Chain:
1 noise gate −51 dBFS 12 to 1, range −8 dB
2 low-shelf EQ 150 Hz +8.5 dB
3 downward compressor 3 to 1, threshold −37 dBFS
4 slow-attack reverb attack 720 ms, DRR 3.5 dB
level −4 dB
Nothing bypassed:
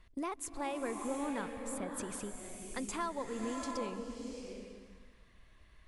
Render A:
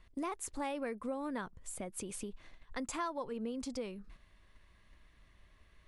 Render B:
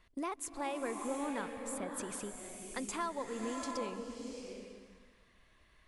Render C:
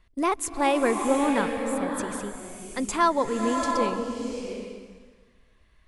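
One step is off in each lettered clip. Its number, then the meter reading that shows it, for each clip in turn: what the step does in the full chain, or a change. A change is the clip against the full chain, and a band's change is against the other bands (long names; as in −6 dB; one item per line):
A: 4, change in crest factor +1.5 dB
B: 2, 125 Hz band −3.0 dB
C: 3, average gain reduction 9.5 dB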